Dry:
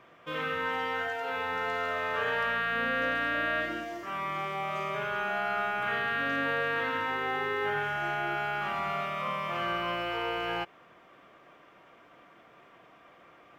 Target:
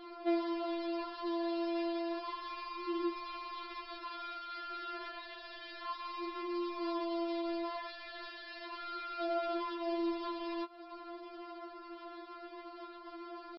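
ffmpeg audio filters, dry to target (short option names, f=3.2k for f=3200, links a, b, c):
-af "lowpass=3.3k,equalizer=f=110:t=o:w=0.92:g=10.5,alimiter=level_in=1.5dB:limit=-24dB:level=0:latency=1:release=212,volume=-1.5dB,acompressor=threshold=-46dB:ratio=3,aresample=16000,acrusher=bits=2:mode=log:mix=0:aa=0.000001,aresample=44100,asetrate=28595,aresample=44100,atempo=1.54221,afftfilt=real='re*4*eq(mod(b,16),0)':imag='im*4*eq(mod(b,16),0)':win_size=2048:overlap=0.75,volume=11dB"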